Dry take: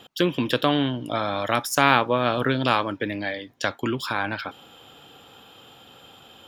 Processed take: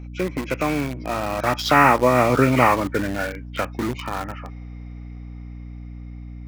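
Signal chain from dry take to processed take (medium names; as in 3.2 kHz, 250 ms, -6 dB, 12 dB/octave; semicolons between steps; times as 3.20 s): knee-point frequency compression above 1.1 kHz 1.5:1; Doppler pass-by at 2.42 s, 14 m/s, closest 11 m; in parallel at -6 dB: bit crusher 5-bit; on the sum: hum 60 Hz, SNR 13 dB; trim +3 dB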